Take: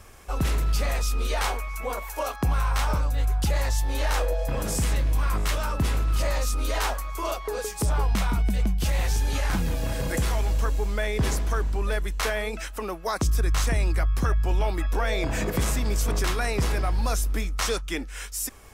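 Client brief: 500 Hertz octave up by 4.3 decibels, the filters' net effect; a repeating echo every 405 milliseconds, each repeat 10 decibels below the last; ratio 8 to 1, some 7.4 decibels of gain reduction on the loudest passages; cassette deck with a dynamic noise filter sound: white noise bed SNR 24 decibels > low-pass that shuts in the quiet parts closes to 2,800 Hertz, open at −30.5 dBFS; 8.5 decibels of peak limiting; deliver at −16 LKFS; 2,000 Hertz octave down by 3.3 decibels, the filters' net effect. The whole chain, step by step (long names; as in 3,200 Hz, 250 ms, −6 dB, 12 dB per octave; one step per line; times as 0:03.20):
parametric band 500 Hz +5.5 dB
parametric band 2,000 Hz −4.5 dB
downward compressor 8 to 1, threshold −27 dBFS
brickwall limiter −25.5 dBFS
repeating echo 405 ms, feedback 32%, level −10 dB
white noise bed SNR 24 dB
low-pass that shuts in the quiet parts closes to 2,800 Hz, open at −30.5 dBFS
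level +18 dB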